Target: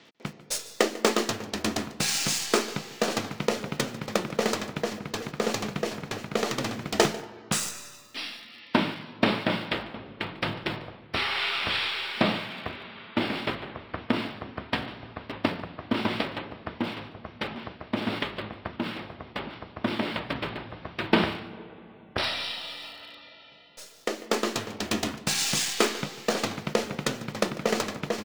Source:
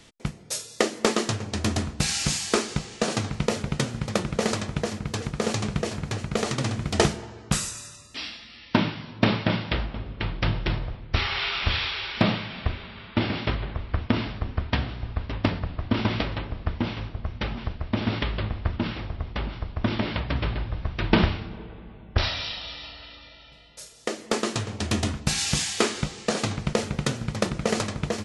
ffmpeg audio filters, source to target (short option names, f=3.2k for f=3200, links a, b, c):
-filter_complex "[0:a]asettb=1/sr,asplit=3[a][b][c];[a]atrim=end=18.274[d];[b]atrim=start=18.27:end=18.87,asetpts=PTS-STARTPTS,afade=t=in:d=0.004:c=qsin,afade=t=out:st=0.596:d=0.004:c=qsin,aeval=exprs='0.282*(cos(1*acos(clip(val(0)/0.282,-1,1)))-cos(1*PI/2))+0.0141*(cos(3*acos(clip(val(0)/0.282,-1,1)))-cos(3*PI/2))':c=same[e];[c]atrim=start=18.866[f];[d][e]acrossfade=d=0.004:c1=hsin:c2=qsin[g];[g][f]acrossfade=d=0.004:c1=qsin:c2=hsin,highpass=220,acrossover=split=5400[h][i];[i]acrusher=bits=6:dc=4:mix=0:aa=0.000001[j];[h][j]amix=inputs=2:normalize=0,aecho=1:1:146:0.106"